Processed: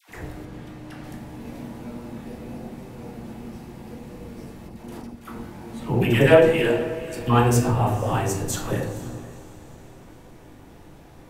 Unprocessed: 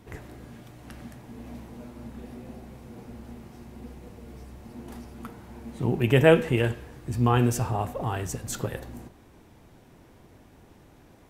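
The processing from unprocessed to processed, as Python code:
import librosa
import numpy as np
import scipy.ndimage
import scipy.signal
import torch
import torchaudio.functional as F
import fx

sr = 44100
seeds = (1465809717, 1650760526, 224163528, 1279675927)

p1 = fx.peak_eq(x, sr, hz=120.0, db=-15.0, octaves=1.3, at=(6.16, 7.19))
p2 = fx.room_shoebox(p1, sr, seeds[0], volume_m3=120.0, walls='mixed', distance_m=0.68)
p3 = 10.0 ** (-16.0 / 20.0) * np.tanh(p2 / 10.0 ** (-16.0 / 20.0))
p4 = p2 + (p3 * librosa.db_to_amplitude(-5.0))
p5 = fx.high_shelf(p4, sr, hz=6900.0, db=-9.0, at=(0.45, 1.04))
p6 = p5 + fx.echo_diffused(p5, sr, ms=480, feedback_pct=42, wet_db=-16, dry=0)
p7 = fx.level_steps(p6, sr, step_db=9, at=(4.67, 5.25), fade=0.02)
y = fx.dispersion(p7, sr, late='lows', ms=96.0, hz=810.0)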